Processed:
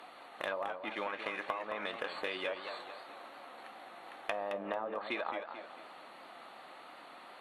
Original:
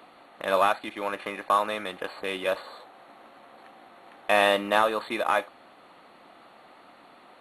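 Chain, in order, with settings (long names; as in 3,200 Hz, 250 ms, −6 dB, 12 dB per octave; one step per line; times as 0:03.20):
treble cut that deepens with the level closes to 760 Hz, closed at −20 dBFS
low-shelf EQ 360 Hz −10.5 dB
downward compressor 10 to 1, threshold −35 dBFS, peak gain reduction 14 dB
flanger 0.36 Hz, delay 1.1 ms, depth 5.4 ms, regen +86%
feedback echo with a swinging delay time 221 ms, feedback 44%, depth 123 cents, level −8.5 dB
level +6 dB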